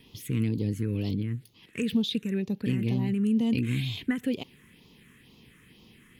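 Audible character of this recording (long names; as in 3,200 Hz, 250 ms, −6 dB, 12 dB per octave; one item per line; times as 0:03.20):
phaser sweep stages 4, 2.1 Hz, lowest notch 770–1,600 Hz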